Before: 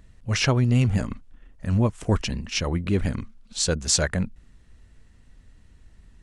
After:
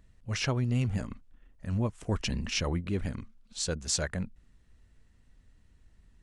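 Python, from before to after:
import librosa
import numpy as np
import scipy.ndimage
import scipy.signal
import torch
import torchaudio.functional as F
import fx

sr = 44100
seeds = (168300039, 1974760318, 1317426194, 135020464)

y = fx.env_flatten(x, sr, amount_pct=50, at=(2.23, 2.79), fade=0.02)
y = y * librosa.db_to_amplitude(-8.5)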